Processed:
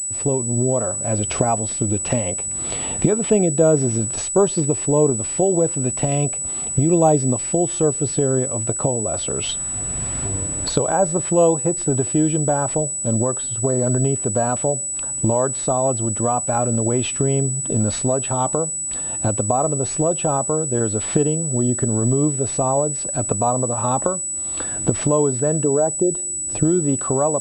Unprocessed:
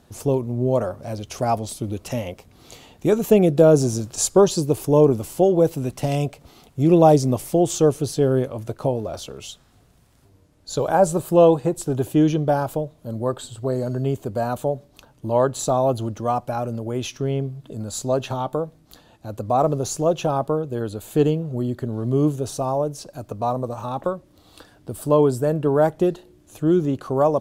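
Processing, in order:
0:25.64–0:26.65: spectral envelope exaggerated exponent 1.5
camcorder AGC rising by 25 dB per second
switching amplifier with a slow clock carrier 7,900 Hz
level −2 dB

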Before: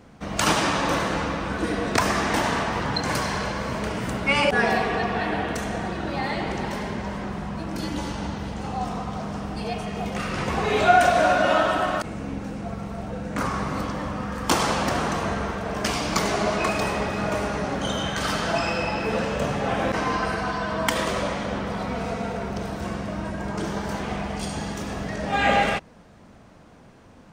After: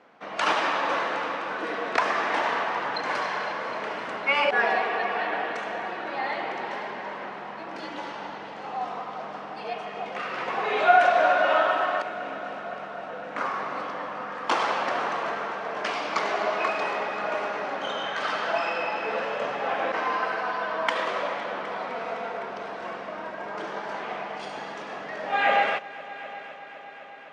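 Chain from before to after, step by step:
band-pass filter 530–2,900 Hz
echo machine with several playback heads 255 ms, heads all three, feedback 67%, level −21 dB

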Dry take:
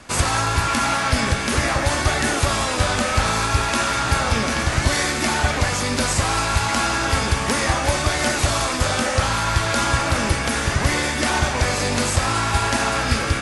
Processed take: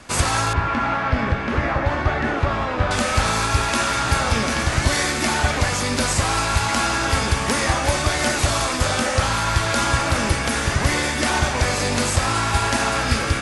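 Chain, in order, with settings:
0:00.53–0:02.91: low-pass filter 2,000 Hz 12 dB per octave

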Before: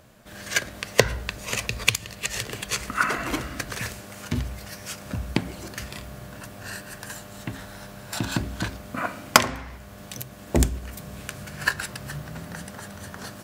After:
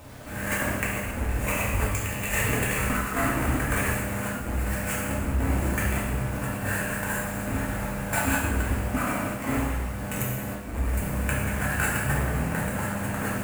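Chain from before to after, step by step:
each half-wave held at its own peak
flat-topped bell 4,400 Hz −16 dB 1.1 octaves
compressor whose output falls as the input rises −27 dBFS, ratio −0.5
bit reduction 8 bits
reverb whose tail is shaped and stops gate 350 ms falling, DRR −5.5 dB
level −4.5 dB

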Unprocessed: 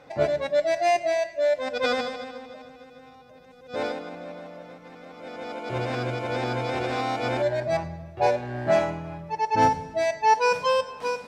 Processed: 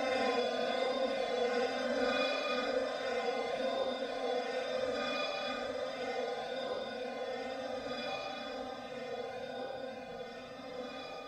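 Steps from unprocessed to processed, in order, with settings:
feedback delay that plays each chunk backwards 209 ms, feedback 72%, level −5 dB
downward compressor 2.5 to 1, threshold −31 dBFS, peak gain reduction 11.5 dB
extreme stretch with random phases 7×, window 0.05 s, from 0:01.96
level −1.5 dB

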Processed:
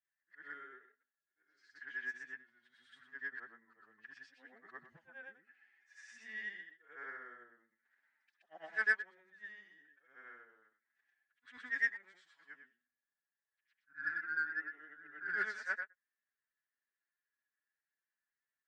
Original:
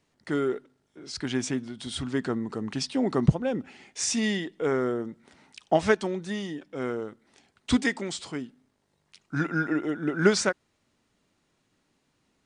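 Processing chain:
every overlapping window played backwards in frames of 167 ms
phase-vocoder stretch with locked phases 1.5×
resonant band-pass 1,700 Hz, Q 13
in parallel at −5 dB: soft clipping −38 dBFS, distortion −13 dB
on the sum: expander for the loud parts 1.5 to 1, over −58 dBFS
level +7 dB

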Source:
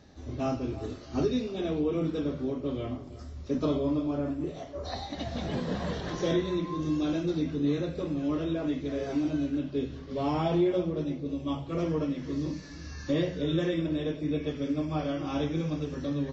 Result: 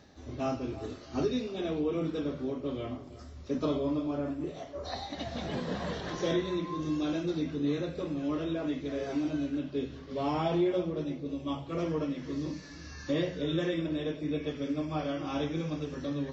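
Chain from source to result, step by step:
spectral tilt +1.5 dB per octave
reversed playback
upward compression, threshold −47 dBFS
reversed playback
high-shelf EQ 3,600 Hz −6.5 dB

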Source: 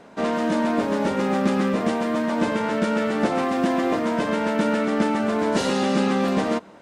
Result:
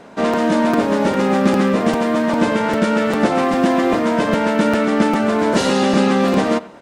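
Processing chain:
far-end echo of a speakerphone 90 ms, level −18 dB
regular buffer underruns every 0.40 s, samples 256, repeat, from 0:00.33
level +6 dB

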